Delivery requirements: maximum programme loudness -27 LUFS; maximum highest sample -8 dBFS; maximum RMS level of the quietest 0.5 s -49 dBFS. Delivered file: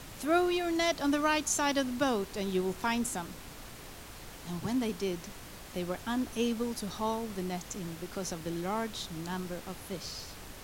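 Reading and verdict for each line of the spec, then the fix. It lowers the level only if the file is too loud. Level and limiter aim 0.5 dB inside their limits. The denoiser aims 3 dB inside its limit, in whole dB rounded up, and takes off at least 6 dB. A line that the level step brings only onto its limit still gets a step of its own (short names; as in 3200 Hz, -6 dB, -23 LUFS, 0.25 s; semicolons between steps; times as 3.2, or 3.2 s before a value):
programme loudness -33.0 LUFS: OK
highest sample -15.0 dBFS: OK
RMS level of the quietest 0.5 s -47 dBFS: fail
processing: denoiser 6 dB, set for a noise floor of -47 dBFS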